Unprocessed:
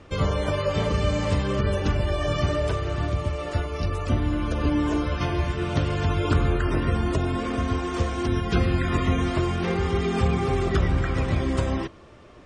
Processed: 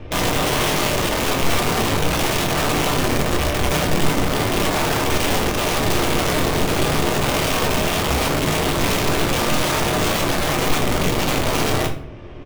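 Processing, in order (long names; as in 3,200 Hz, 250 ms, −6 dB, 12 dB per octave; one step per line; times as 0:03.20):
lower of the sound and its delayed copy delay 0.33 ms
Bessel low-pass filter 3,200 Hz
low-shelf EQ 92 Hz +8.5 dB
mains-hum notches 60/120/180/240 Hz
downward compressor 20 to 1, threshold −22 dBFS, peak gain reduction 11.5 dB
wrap-around overflow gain 25.5 dB
double-tracking delay 26 ms −12 dB
rectangular room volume 54 cubic metres, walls mixed, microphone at 0.48 metres
level +8 dB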